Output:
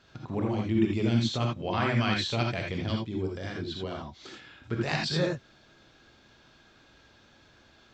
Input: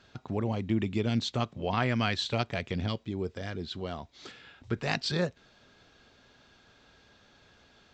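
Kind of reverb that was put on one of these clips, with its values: gated-style reverb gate 100 ms rising, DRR 0 dB; trim -1.5 dB

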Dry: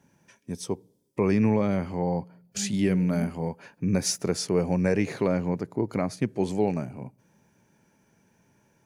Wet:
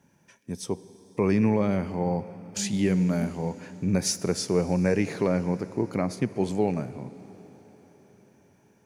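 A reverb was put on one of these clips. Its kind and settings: plate-style reverb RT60 5 s, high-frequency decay 1×, DRR 15 dB

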